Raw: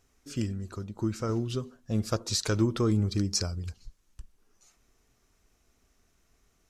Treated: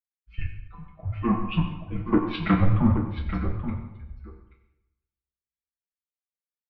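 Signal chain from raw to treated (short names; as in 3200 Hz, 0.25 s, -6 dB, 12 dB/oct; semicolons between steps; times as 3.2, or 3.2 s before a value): per-bin expansion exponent 1.5; reverb removal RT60 0.77 s; treble ducked by the level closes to 700 Hz, closed at -25 dBFS; low shelf 490 Hz -4.5 dB; notches 60/120/180/240/300 Hz; comb 7 ms, depth 97%; sine folder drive 15 dB, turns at -7 dBFS; rotary speaker horn 6.7 Hz; echo 0.83 s -6.5 dB; reverb RT60 1.6 s, pre-delay 6 ms, DRR 0 dB; mistuned SSB -230 Hz 180–3000 Hz; three-band expander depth 70%; gain -6.5 dB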